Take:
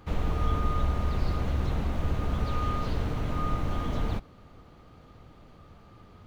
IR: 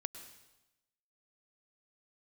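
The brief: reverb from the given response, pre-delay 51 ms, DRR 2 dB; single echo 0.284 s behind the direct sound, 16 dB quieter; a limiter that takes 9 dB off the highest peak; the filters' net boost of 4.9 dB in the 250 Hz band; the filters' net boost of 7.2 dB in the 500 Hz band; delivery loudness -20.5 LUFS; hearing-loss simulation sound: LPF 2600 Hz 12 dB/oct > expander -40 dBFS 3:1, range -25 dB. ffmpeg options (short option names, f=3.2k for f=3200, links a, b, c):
-filter_complex "[0:a]equalizer=f=250:t=o:g=4.5,equalizer=f=500:t=o:g=7.5,alimiter=limit=-22dB:level=0:latency=1,aecho=1:1:284:0.158,asplit=2[a][b];[1:a]atrim=start_sample=2205,adelay=51[c];[b][c]afir=irnorm=-1:irlink=0,volume=-0.5dB[d];[a][d]amix=inputs=2:normalize=0,lowpass=2.6k,agate=range=-25dB:threshold=-40dB:ratio=3,volume=10.5dB"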